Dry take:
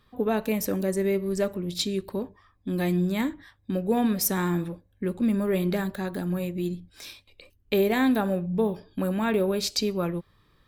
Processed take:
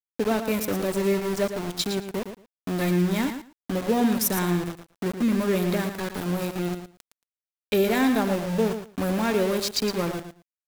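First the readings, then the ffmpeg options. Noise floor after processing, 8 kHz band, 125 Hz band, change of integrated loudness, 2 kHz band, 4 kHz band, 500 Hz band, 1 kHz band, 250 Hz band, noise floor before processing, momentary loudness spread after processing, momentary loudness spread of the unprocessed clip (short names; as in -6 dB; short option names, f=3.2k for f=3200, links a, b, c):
under -85 dBFS, +2.0 dB, +1.0 dB, +1.5 dB, +3.0 dB, +2.0 dB, +1.0 dB, +2.5 dB, +1.0 dB, -64 dBFS, 10 LU, 11 LU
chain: -filter_complex "[0:a]aeval=exprs='val(0)*gte(abs(val(0)),0.0355)':c=same,asplit=2[a][b];[b]aecho=0:1:113|226:0.355|0.0532[c];[a][c]amix=inputs=2:normalize=0,volume=1dB"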